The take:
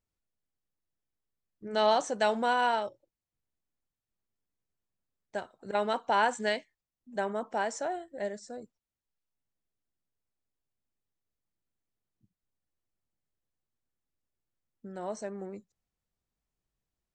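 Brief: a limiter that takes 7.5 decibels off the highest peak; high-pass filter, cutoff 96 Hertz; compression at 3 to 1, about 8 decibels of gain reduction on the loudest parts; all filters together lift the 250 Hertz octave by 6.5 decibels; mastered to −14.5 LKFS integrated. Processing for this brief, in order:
high-pass filter 96 Hz
parametric band 250 Hz +8 dB
downward compressor 3 to 1, threshold −31 dBFS
level +24.5 dB
brickwall limiter −3.5 dBFS

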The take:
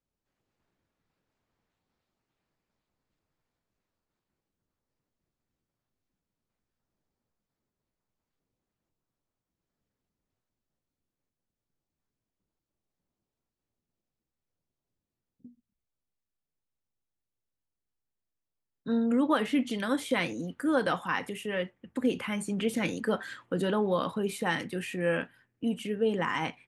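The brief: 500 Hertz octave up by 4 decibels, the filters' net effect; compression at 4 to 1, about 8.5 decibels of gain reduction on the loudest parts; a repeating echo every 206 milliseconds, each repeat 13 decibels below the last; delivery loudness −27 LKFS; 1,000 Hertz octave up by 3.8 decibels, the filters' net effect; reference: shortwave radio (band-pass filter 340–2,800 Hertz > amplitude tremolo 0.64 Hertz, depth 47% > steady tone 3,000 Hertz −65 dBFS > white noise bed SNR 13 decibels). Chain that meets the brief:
parametric band 500 Hz +5 dB
parametric band 1,000 Hz +3.5 dB
downward compressor 4 to 1, threshold −28 dBFS
band-pass filter 340–2,800 Hz
repeating echo 206 ms, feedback 22%, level −13 dB
amplitude tremolo 0.64 Hz, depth 47%
steady tone 3,000 Hz −65 dBFS
white noise bed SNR 13 dB
level +15 dB

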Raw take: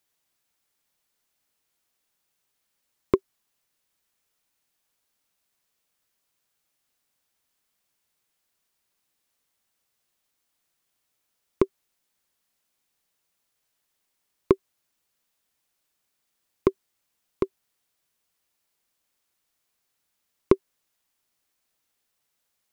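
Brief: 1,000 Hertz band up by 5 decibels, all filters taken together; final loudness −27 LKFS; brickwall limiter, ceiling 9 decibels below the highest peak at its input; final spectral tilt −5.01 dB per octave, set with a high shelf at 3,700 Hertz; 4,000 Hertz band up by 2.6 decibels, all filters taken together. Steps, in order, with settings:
parametric band 1,000 Hz +5.5 dB
high-shelf EQ 3,700 Hz −5 dB
parametric band 4,000 Hz +6 dB
level +6.5 dB
brickwall limiter −4 dBFS

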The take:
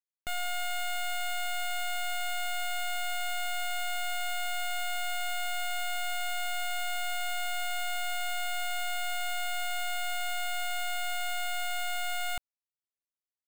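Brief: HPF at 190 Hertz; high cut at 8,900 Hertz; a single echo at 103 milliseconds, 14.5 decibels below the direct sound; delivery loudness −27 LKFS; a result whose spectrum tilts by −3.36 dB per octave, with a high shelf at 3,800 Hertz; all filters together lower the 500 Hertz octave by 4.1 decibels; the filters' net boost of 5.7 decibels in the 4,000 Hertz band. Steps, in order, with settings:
high-pass filter 190 Hz
low-pass filter 8,900 Hz
parametric band 500 Hz −9 dB
high-shelf EQ 3,800 Hz +6.5 dB
parametric band 4,000 Hz +4.5 dB
single-tap delay 103 ms −14.5 dB
level +3 dB

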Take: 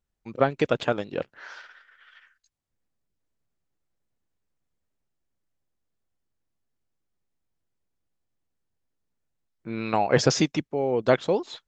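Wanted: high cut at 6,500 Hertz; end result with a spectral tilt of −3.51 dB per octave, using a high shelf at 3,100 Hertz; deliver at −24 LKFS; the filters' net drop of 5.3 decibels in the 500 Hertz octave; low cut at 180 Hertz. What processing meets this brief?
high-pass filter 180 Hz
low-pass filter 6,500 Hz
parametric band 500 Hz −6.5 dB
high-shelf EQ 3,100 Hz +5.5 dB
level +3.5 dB

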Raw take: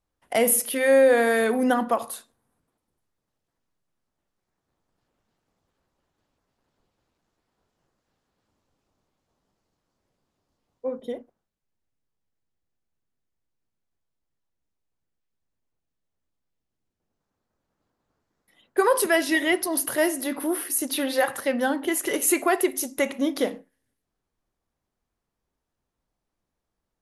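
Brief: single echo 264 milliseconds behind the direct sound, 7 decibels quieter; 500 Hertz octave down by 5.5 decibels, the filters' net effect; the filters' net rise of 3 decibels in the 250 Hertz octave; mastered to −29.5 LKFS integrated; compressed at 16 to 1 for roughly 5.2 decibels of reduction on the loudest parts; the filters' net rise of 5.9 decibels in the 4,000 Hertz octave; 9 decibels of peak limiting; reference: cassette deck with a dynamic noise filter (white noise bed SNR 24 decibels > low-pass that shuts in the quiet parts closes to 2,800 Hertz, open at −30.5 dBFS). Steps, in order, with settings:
parametric band 250 Hz +6.5 dB
parametric band 500 Hz −8.5 dB
parametric band 4,000 Hz +8 dB
downward compressor 16 to 1, threshold −21 dBFS
brickwall limiter −21 dBFS
single-tap delay 264 ms −7 dB
white noise bed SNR 24 dB
low-pass that shuts in the quiet parts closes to 2,800 Hz, open at −30.5 dBFS

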